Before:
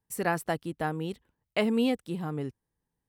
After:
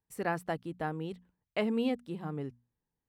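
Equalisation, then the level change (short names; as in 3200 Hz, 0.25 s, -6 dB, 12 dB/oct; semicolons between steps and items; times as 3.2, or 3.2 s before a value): high shelf 5000 Hz -10 dB; notches 60/120/180/240 Hz; -4.0 dB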